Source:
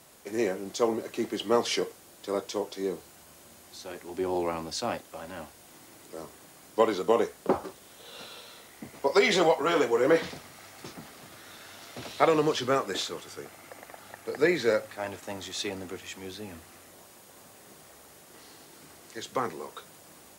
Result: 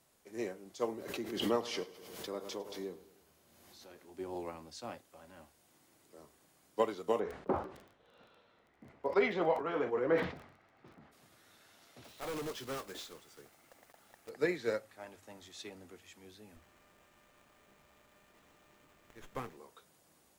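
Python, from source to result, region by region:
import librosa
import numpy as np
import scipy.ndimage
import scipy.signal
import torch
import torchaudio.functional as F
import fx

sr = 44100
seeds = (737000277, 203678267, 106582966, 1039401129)

y = fx.chain(x, sr, fx.peak_eq(hz=8300.0, db=-5.5, octaves=0.68),
    fx.echo_feedback(ms=105, feedback_pct=51, wet_db=-14),
    fx.pre_swell(db_per_s=34.0), at=(0.99, 4.06))
y = fx.lowpass(y, sr, hz=2100.0, slope=12, at=(7.19, 11.11), fade=0.02)
y = fx.dmg_crackle(y, sr, seeds[0], per_s=20.0, level_db=-40.0, at=(7.19, 11.11), fade=0.02)
y = fx.sustainer(y, sr, db_per_s=76.0, at=(7.19, 11.11), fade=0.02)
y = fx.chain(y, sr, fx.block_float(bits=3),
    fx.overload_stage(gain_db=25.0), at=(12.04, 14.31))
y = fx.chain(y, sr, fx.high_shelf(hz=7400.0, db=11.5),
    fx.running_max(window=9), at=(16.56, 19.57))
y = fx.low_shelf(y, sr, hz=96.0, db=6.5)
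y = fx.hum_notches(y, sr, base_hz=50, count=2)
y = fx.upward_expand(y, sr, threshold_db=-34.0, expansion=1.5)
y = y * 10.0 ** (-7.0 / 20.0)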